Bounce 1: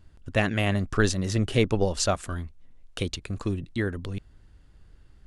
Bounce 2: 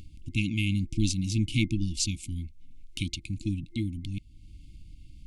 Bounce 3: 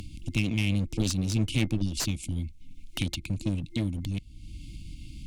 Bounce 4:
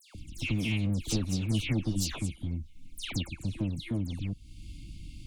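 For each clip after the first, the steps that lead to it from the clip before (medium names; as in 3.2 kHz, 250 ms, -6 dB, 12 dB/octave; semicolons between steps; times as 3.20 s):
FFT band-reject 340–2100 Hz; in parallel at +0.5 dB: upward compressor, threshold -29 dBFS; on the sum: trim -7.5 dB
one-sided clip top -33 dBFS, bottom -16.5 dBFS; three bands compressed up and down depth 40%; trim +2.5 dB
phase dispersion lows, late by 148 ms, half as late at 2.6 kHz; trim -2.5 dB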